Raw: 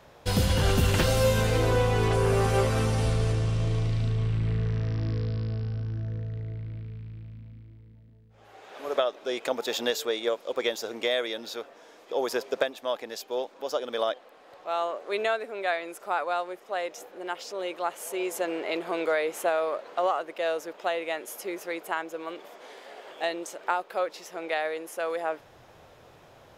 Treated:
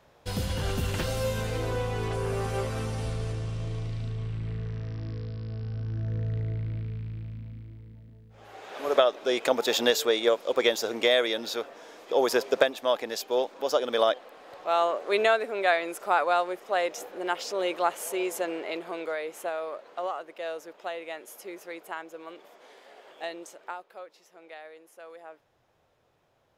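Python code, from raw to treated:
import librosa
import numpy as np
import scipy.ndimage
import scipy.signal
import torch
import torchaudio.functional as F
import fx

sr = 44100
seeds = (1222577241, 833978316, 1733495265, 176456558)

y = fx.gain(x, sr, db=fx.line((5.38, -6.5), (6.3, 4.5), (17.83, 4.5), (19.06, -6.5), (23.45, -6.5), (24.06, -16.0)))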